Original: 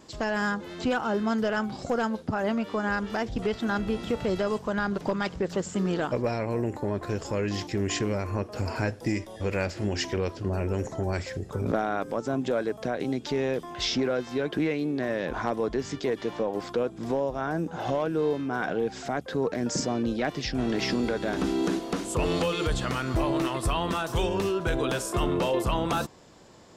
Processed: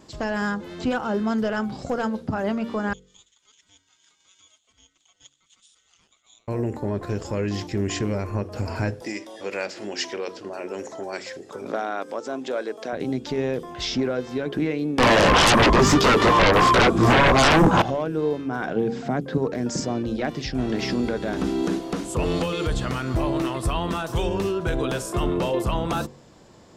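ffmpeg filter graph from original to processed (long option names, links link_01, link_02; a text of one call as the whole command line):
ffmpeg -i in.wav -filter_complex "[0:a]asettb=1/sr,asplit=3[link_01][link_02][link_03];[link_01]atrim=end=2.934[link_04];[link_02]atrim=start=2.93:end=6.48,asetpts=PTS-STARTPTS,afade=type=in:duration=0.004:curve=qsin,afade=type=out:start_time=3.546:duration=0.004:curve=qsin,bandpass=frequency=5100:width_type=q:width=9.6,aeval=exprs='val(0)*sin(2*PI*1700*n/s)':channel_layout=same[link_05];[link_03]atrim=start=6.476[link_06];[link_04][link_05]acrossfade=duration=0.004:curve1=hsin:curve2=qsin[link_07];[link_07][link_06]acrossfade=duration=0.004:curve1=qsin:curve2=hsin,asettb=1/sr,asplit=3[link_08][link_09][link_10];[link_08]atrim=end=9.024[link_11];[link_09]atrim=start=9.02:end=12.93,asetpts=PTS-STARTPTS,afade=type=in:duration=0.004:curve=qsin,afade=type=out:start_time=3.906:duration=0.004:curve=qsin,acompressor=mode=upward:threshold=-34dB:ratio=2.5:attack=3.2:release=140:knee=2.83:detection=peak,highpass=260,lowpass=5400,aemphasis=mode=production:type=bsi[link_12];[link_10]atrim=start=12.926[link_13];[link_11][link_12]acrossfade=duration=0.004:curve1=hsin:curve2=qsin[link_14];[link_14][link_13]acrossfade=duration=0.004:curve1=qsin:curve2=hsin,asettb=1/sr,asplit=3[link_15][link_16][link_17];[link_15]atrim=end=14.984[link_18];[link_16]atrim=start=14.98:end=17.82,asetpts=PTS-STARTPTS,afade=type=in:duration=0.004:curve=qsin,afade=type=out:start_time=2.836:duration=0.004:curve=qsin,equalizer=frequency=1100:width=4:gain=14,flanger=delay=15:depth=5.7:speed=2.9,aeval=exprs='0.211*sin(PI/2*7.94*val(0)/0.211)':channel_layout=same[link_19];[link_17]atrim=start=17.816[link_20];[link_18][link_19]acrossfade=duration=0.004:curve1=hsin:curve2=qsin[link_21];[link_21][link_20]acrossfade=duration=0.004:curve1=qsin:curve2=hsin,asettb=1/sr,asplit=3[link_22][link_23][link_24];[link_22]atrim=end=18.764[link_25];[link_23]atrim=start=18.76:end=19.38,asetpts=PTS-STARTPTS,afade=type=in:duration=0.004:curve=qsin,afade=type=out:start_time=0.616:duration=0.004:curve=qsin,highpass=110,equalizer=frequency=160:width=0.66:gain=9.5,acrossover=split=4200[link_26][link_27];[link_27]acompressor=threshold=-53dB:ratio=4:attack=1:release=60[link_28];[link_26][link_28]amix=inputs=2:normalize=0[link_29];[link_24]atrim=start=19.376[link_30];[link_25][link_29]acrossfade=duration=0.004:curve1=hsin:curve2=qsin[link_31];[link_31][link_30]acrossfade=duration=0.004:curve1=qsin:curve2=hsin,lowshelf=frequency=440:gain=4.5,bandreject=frequency=46.46:width_type=h:width=4,bandreject=frequency=92.92:width_type=h:width=4,bandreject=frequency=139.38:width_type=h:width=4,bandreject=frequency=185.84:width_type=h:width=4,bandreject=frequency=232.3:width_type=h:width=4,bandreject=frequency=278.76:width_type=h:width=4,bandreject=frequency=325.22:width_type=h:width=4,bandreject=frequency=371.68:width_type=h:width=4,bandreject=frequency=418.14:width_type=h:width=4,bandreject=frequency=464.6:width_type=h:width=4,bandreject=frequency=511.06:width_type=h:width=4" out.wav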